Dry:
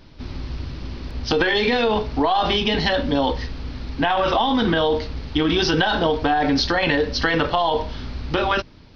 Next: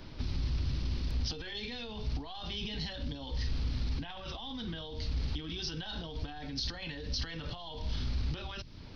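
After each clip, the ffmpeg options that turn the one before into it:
ffmpeg -i in.wav -filter_complex "[0:a]acompressor=threshold=-23dB:ratio=6,alimiter=level_in=0.5dB:limit=-24dB:level=0:latency=1:release=11,volume=-0.5dB,acrossover=split=180|3000[link_01][link_02][link_03];[link_02]acompressor=threshold=-49dB:ratio=4[link_04];[link_01][link_04][link_03]amix=inputs=3:normalize=0" out.wav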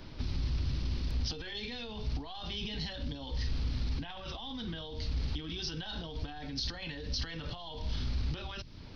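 ffmpeg -i in.wav -af anull out.wav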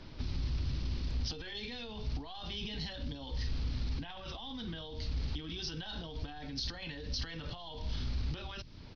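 ffmpeg -i in.wav -af "aresample=16000,aresample=44100,volume=-2dB" out.wav

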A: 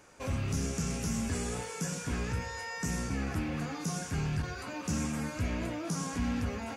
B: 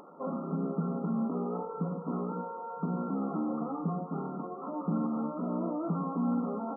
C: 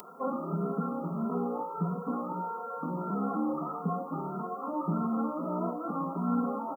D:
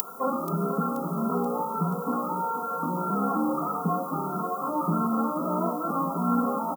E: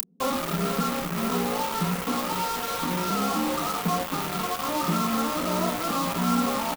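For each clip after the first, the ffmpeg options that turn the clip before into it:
ffmpeg -i in.wav -af "afftfilt=real='re*between(b*sr/4096,160,1400)':imag='im*between(b*sr/4096,160,1400)':win_size=4096:overlap=0.75,acompressor=mode=upward:threshold=-50dB:ratio=2.5,volume=4dB" out.wav
ffmpeg -i in.wav -filter_complex "[0:a]crystalizer=i=9.5:c=0,asplit=2[link_01][link_02];[link_02]adelay=2.6,afreqshift=1.6[link_03];[link_01][link_03]amix=inputs=2:normalize=1,volume=2.5dB" out.wav
ffmpeg -i in.wav -af "crystalizer=i=7:c=0,aecho=1:1:481|962|1443|1924|2405|2886:0.188|0.111|0.0656|0.0387|0.0228|0.0135,volume=3.5dB" out.wav
ffmpeg -i in.wav -filter_complex "[0:a]acrossover=split=220[link_01][link_02];[link_02]acrusher=bits=4:mix=0:aa=0.000001[link_03];[link_01][link_03]amix=inputs=2:normalize=0,asplit=2[link_04][link_05];[link_05]adelay=28,volume=-11.5dB[link_06];[link_04][link_06]amix=inputs=2:normalize=0" out.wav

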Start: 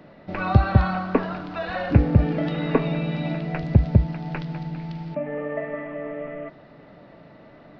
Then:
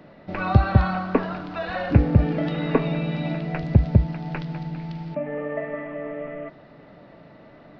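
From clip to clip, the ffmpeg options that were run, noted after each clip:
ffmpeg -i in.wav -af anull out.wav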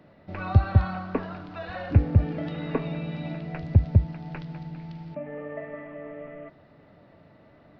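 ffmpeg -i in.wav -af "equalizer=frequency=89:width=2.3:gain=10,volume=-7.5dB" out.wav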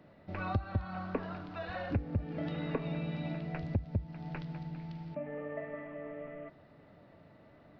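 ffmpeg -i in.wav -af "acompressor=threshold=-25dB:ratio=6,volume=-4dB" out.wav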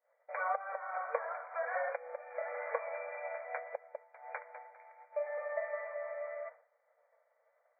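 ffmpeg -i in.wav -af "afftfilt=real='re*between(b*sr/4096,460,2400)':imag='im*between(b*sr/4096,460,2400)':win_size=4096:overlap=0.75,agate=range=-33dB:threshold=-51dB:ratio=3:detection=peak,volume=5dB" out.wav

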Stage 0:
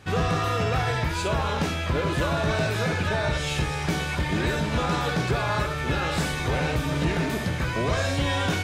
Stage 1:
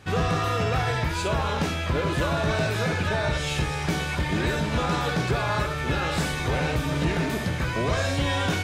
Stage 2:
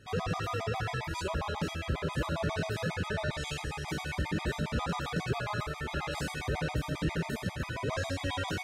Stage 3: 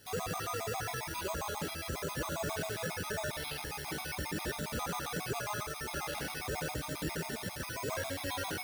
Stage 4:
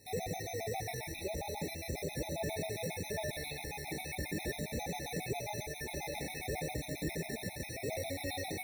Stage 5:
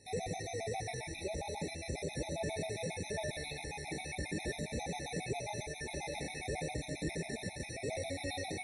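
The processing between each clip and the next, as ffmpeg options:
ffmpeg -i in.wav -af anull out.wav
ffmpeg -i in.wav -af "afftfilt=real='re*gt(sin(2*PI*7.4*pts/sr)*(1-2*mod(floor(b*sr/1024/640),2)),0)':imag='im*gt(sin(2*PI*7.4*pts/sr)*(1-2*mod(floor(b*sr/1024/640),2)),0)':win_size=1024:overlap=0.75,volume=-5.5dB" out.wav
ffmpeg -i in.wav -filter_complex "[0:a]acrusher=samples=6:mix=1:aa=0.000001,bass=frequency=250:gain=-7,treble=frequency=4000:gain=12,acrossover=split=3200[link_01][link_02];[link_02]acompressor=threshold=-39dB:ratio=4:attack=1:release=60[link_03];[link_01][link_03]amix=inputs=2:normalize=0,volume=-2dB" out.wav
ffmpeg -i in.wav -af "afftfilt=real='re*eq(mod(floor(b*sr/1024/880),2),0)':imag='im*eq(mod(floor(b*sr/1024/880),2),0)':win_size=1024:overlap=0.75" out.wav
ffmpeg -i in.wav -ar 24000 -c:a libmp3lame -b:a 56k out.mp3

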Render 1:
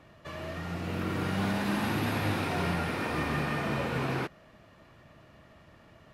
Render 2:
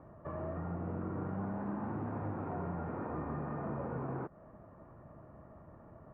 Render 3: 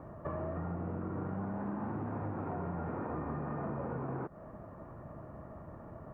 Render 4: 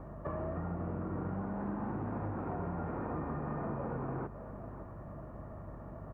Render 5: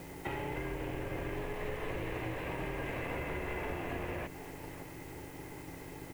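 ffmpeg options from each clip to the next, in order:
ffmpeg -i in.wav -af "acompressor=threshold=-37dB:ratio=6,lowpass=frequency=1200:width=0.5412,lowpass=frequency=1200:width=1.3066,volume=2dB" out.wav
ffmpeg -i in.wav -af "acompressor=threshold=-41dB:ratio=6,volume=6.5dB" out.wav
ffmpeg -i in.wav -af "aeval=exprs='val(0)+0.00398*(sin(2*PI*50*n/s)+sin(2*PI*2*50*n/s)/2+sin(2*PI*3*50*n/s)/3+sin(2*PI*4*50*n/s)/4+sin(2*PI*5*50*n/s)/5)':channel_layout=same,aecho=1:1:551:0.224" out.wav
ffmpeg -i in.wav -af "aeval=exprs='val(0)*sin(2*PI*220*n/s)':channel_layout=same,aexciter=amount=12.2:drive=9.5:freq=2200,volume=2dB" out.wav

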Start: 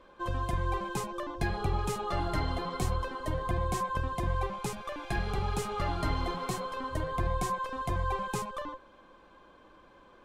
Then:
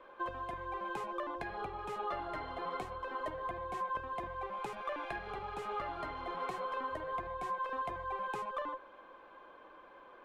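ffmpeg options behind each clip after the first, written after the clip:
ffmpeg -i in.wav -filter_complex "[0:a]acompressor=threshold=-36dB:ratio=5,acrossover=split=350 3000:gain=0.158 1 0.141[link_01][link_02][link_03];[link_01][link_02][link_03]amix=inputs=3:normalize=0,volume=3dB" out.wav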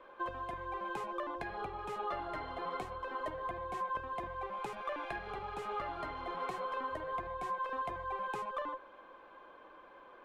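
ffmpeg -i in.wav -af anull out.wav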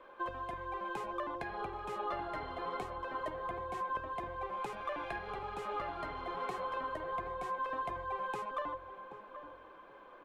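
ffmpeg -i in.wav -filter_complex "[0:a]asplit=2[link_01][link_02];[link_02]adelay=778,lowpass=frequency=870:poles=1,volume=-9dB,asplit=2[link_03][link_04];[link_04]adelay=778,lowpass=frequency=870:poles=1,volume=0.33,asplit=2[link_05][link_06];[link_06]adelay=778,lowpass=frequency=870:poles=1,volume=0.33,asplit=2[link_07][link_08];[link_08]adelay=778,lowpass=frequency=870:poles=1,volume=0.33[link_09];[link_01][link_03][link_05][link_07][link_09]amix=inputs=5:normalize=0" out.wav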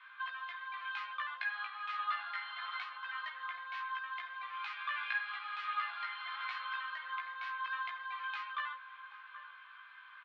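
ffmpeg -i in.wav -filter_complex "[0:a]asuperpass=centerf=2400:order=8:qfactor=0.78,asplit=2[link_01][link_02];[link_02]adelay=17,volume=-3dB[link_03];[link_01][link_03]amix=inputs=2:normalize=0,volume=6.5dB" out.wav

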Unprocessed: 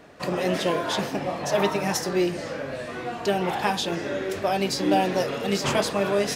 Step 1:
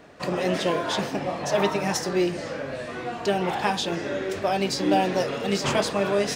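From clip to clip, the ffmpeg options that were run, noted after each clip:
ffmpeg -i in.wav -af "equalizer=frequency=12000:width_type=o:width=0.21:gain=-14.5" out.wav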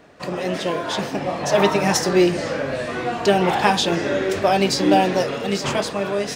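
ffmpeg -i in.wav -af "dynaudnorm=framelen=220:gausssize=13:maxgain=11.5dB" out.wav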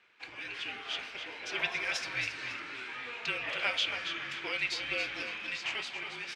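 ffmpeg -i in.wav -af "afreqshift=-240,bandpass=frequency=2500:width_type=q:width=2.4:csg=0,aecho=1:1:276|552|828|1104:0.398|0.123|0.0383|0.0119,volume=-3dB" out.wav

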